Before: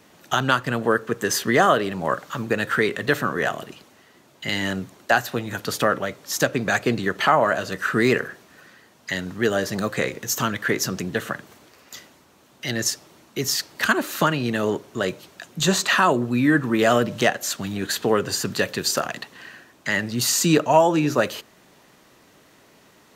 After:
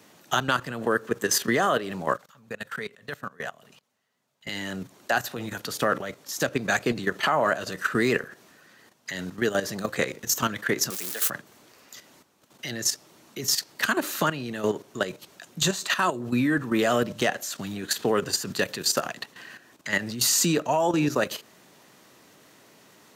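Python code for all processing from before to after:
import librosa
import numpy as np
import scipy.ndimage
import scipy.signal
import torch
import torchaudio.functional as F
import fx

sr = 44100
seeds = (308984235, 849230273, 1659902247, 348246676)

y = fx.chain(x, sr, fx.peak_eq(hz=330.0, db=-14.5, octaves=0.3),
    fx.level_steps(step_db=24), at=(2.17, 4.47))
y = fx.chain(y, sr, fx.crossing_spikes(level_db=-17.5),
    fx.bessel_highpass(hz=540.0, order=2), at=(10.9, 11.3))
y = fx.chain(y, sr, fx.high_shelf(hz=2400.0, db=3.5),
    fx.comb_fb(f0_hz=120.0, decay_s=0.25, harmonics='odd', damping=0.0, mix_pct=50), at=(15.68, 16.2))
y = scipy.signal.sosfilt(scipy.signal.butter(2, 100.0, 'highpass', fs=sr, output='sos'), y)
y = fx.bass_treble(y, sr, bass_db=0, treble_db=3)
y = fx.level_steps(y, sr, step_db=11)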